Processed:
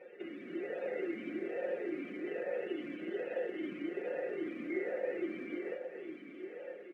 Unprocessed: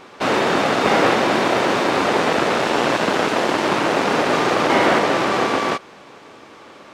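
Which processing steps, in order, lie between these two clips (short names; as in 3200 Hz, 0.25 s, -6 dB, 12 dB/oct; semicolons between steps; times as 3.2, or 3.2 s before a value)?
comb 5.6 ms, depth 45%; loudest bins only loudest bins 64; compressor 4:1, threshold -34 dBFS, peak gain reduction 18.5 dB; air absorption 170 m; echo with dull and thin repeats by turns 0.423 s, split 950 Hz, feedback 65%, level -9 dB; companded quantiser 6-bit; AGC gain up to 5 dB; echo 0.282 s -10.5 dB; vowel sweep e-i 1.2 Hz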